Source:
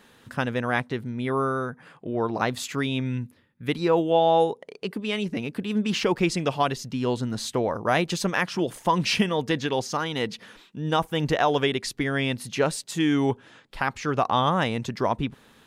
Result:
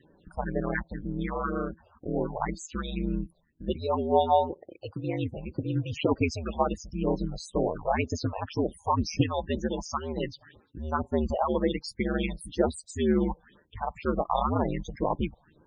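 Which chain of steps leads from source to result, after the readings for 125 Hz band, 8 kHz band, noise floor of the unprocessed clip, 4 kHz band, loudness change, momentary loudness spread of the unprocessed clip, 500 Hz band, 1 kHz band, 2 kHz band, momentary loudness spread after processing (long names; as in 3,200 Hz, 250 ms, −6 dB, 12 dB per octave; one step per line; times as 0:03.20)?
−3.0 dB, −8.0 dB, −56 dBFS, −11.0 dB, −4.0 dB, 10 LU, −4.0 dB, −4.0 dB, −10.0 dB, 10 LU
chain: ring modulation 79 Hz
all-pass phaser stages 4, 2 Hz, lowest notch 270–3,500 Hz
spectral peaks only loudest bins 32
level +1 dB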